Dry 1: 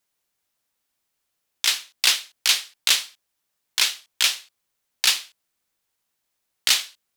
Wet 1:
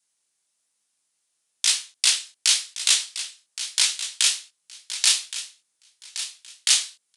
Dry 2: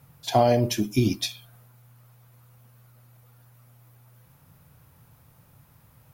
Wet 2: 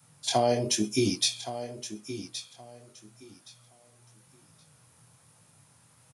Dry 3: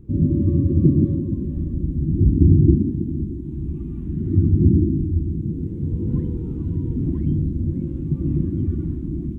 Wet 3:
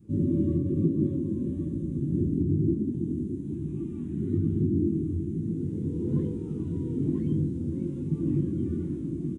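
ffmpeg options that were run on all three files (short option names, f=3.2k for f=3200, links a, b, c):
-af "aresample=22050,aresample=44100,adynamicequalizer=threshold=0.00891:dfrequency=430:dqfactor=3.3:tfrequency=430:tqfactor=3.3:attack=5:release=100:ratio=0.375:range=3.5:mode=boostabove:tftype=bell,flanger=delay=18:depth=7:speed=1.1,alimiter=limit=-12.5dB:level=0:latency=1:release=431,highpass=130,aemphasis=mode=production:type=75fm,aecho=1:1:1120|2240|3360:0.251|0.0527|0.0111"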